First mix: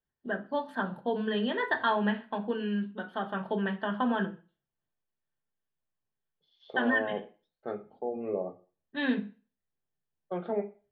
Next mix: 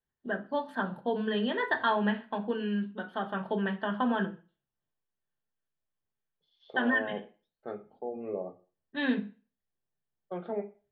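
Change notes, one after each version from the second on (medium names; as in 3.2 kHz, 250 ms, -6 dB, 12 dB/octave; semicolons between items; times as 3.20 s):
second voice -3.0 dB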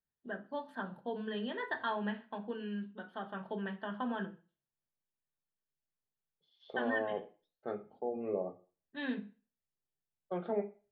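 first voice -8.5 dB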